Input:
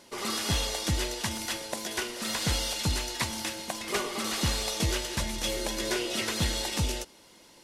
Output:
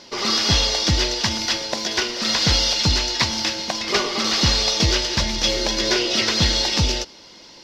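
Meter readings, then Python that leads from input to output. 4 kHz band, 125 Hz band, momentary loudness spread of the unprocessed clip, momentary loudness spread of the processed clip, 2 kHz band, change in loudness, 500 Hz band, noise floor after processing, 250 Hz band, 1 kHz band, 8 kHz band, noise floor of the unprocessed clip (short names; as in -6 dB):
+13.5 dB, +8.5 dB, 5 LU, 6 LU, +9.5 dB, +11.0 dB, +8.5 dB, -45 dBFS, +8.5 dB, +8.5 dB, +7.5 dB, -56 dBFS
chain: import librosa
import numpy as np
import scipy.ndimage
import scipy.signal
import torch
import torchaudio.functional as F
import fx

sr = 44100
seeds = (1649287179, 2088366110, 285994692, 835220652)

y = fx.high_shelf_res(x, sr, hz=7100.0, db=-12.5, q=3.0)
y = F.gain(torch.from_numpy(y), 8.5).numpy()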